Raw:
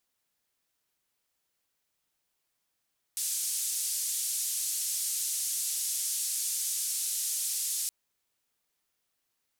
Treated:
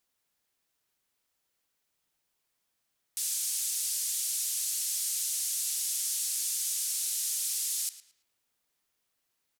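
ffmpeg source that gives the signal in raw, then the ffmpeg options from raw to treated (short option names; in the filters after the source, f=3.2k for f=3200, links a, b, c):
-f lavfi -i "anoisesrc=c=white:d=4.72:r=44100:seed=1,highpass=f=6800,lowpass=f=10000,volume=-19.2dB"
-filter_complex "[0:a]asplit=2[a][b];[b]adelay=111,lowpass=f=3.9k:p=1,volume=-11dB,asplit=2[c][d];[d]adelay=111,lowpass=f=3.9k:p=1,volume=0.41,asplit=2[e][f];[f]adelay=111,lowpass=f=3.9k:p=1,volume=0.41,asplit=2[g][h];[h]adelay=111,lowpass=f=3.9k:p=1,volume=0.41[i];[a][c][e][g][i]amix=inputs=5:normalize=0"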